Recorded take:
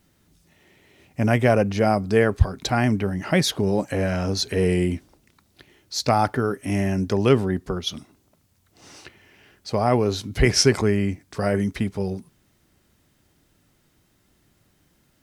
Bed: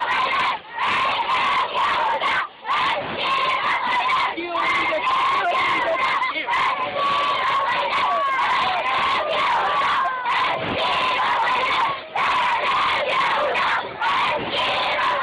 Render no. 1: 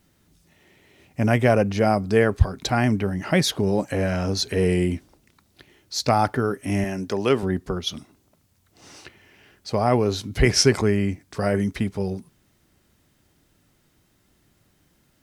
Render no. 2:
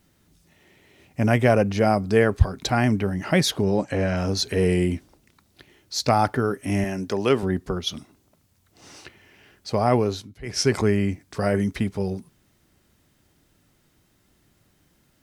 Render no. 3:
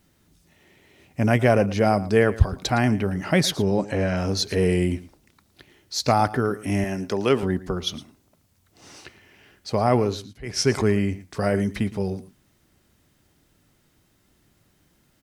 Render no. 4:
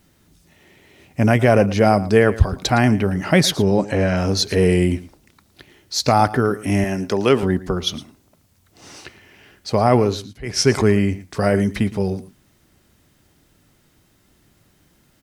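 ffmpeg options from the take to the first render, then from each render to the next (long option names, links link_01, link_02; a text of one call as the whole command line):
ffmpeg -i in.wav -filter_complex "[0:a]asettb=1/sr,asplit=3[link_01][link_02][link_03];[link_01]atrim=end=6.844[link_04];[link_02]atrim=start=6.84:end=7.43,asetpts=PTS-STARTPTS,afade=type=in:duration=0.004:curve=qsin,afade=type=out:start_time=0.586:duration=0.004:curve=qsin,highpass=frequency=330:poles=1[link_05];[link_03]atrim=start=7.426[link_06];[link_04][link_05]acrossfade=duration=0.004:curve1=hsin:curve2=qsin[link_07];[link_07][link_06]acrossfade=duration=0.004:curve1=qsin:curve2=hsin" out.wav
ffmpeg -i in.wav -filter_complex "[0:a]asettb=1/sr,asplit=3[link_01][link_02][link_03];[link_01]atrim=end=3.634[link_04];[link_02]atrim=start=3.63:end=4.17,asetpts=PTS-STARTPTS,afade=type=in:duration=0.004:curve=qsin,afade=type=out:start_time=0.536:duration=0.004:curve=qsin,lowpass=6700[link_05];[link_03]atrim=start=4.166[link_06];[link_04][link_05]acrossfade=duration=0.004:curve1=hsin:curve2=qsin[link_07];[link_07][link_06]acrossfade=duration=0.004:curve1=qsin:curve2=hsin,asplit=3[link_08][link_09][link_10];[link_08]atrim=end=10.38,asetpts=PTS-STARTPTS,afade=type=out:start_time=9.99:duration=0.39:silence=0.0668344[link_11];[link_09]atrim=start=10.38:end=10.42,asetpts=PTS-STARTPTS,volume=-23.5dB[link_12];[link_10]atrim=start=10.42,asetpts=PTS-STARTPTS,afade=type=in:duration=0.39:silence=0.0668344[link_13];[link_11][link_12][link_13]concat=n=3:v=0:a=1" out.wav
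ffmpeg -i in.wav -af "aecho=1:1:113:0.133" out.wav
ffmpeg -i in.wav -af "volume=5dB,alimiter=limit=-2dB:level=0:latency=1" out.wav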